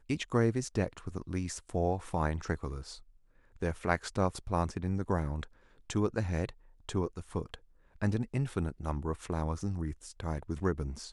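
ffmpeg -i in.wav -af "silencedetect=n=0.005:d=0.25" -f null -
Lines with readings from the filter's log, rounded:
silence_start: 3.00
silence_end: 3.56 | silence_duration: 0.56
silence_start: 5.46
silence_end: 5.90 | silence_duration: 0.44
silence_start: 6.51
silence_end: 6.89 | silence_duration: 0.38
silence_start: 7.56
silence_end: 7.96 | silence_duration: 0.39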